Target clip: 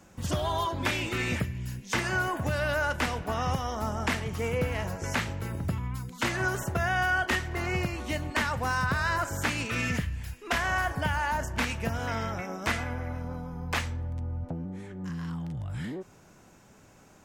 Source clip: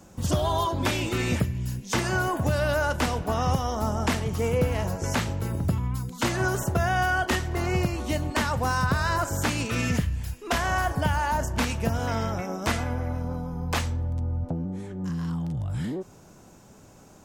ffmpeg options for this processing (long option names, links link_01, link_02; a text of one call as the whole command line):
ffmpeg -i in.wav -af "equalizer=frequency=2000:width=1:gain=7.5,volume=-5.5dB" out.wav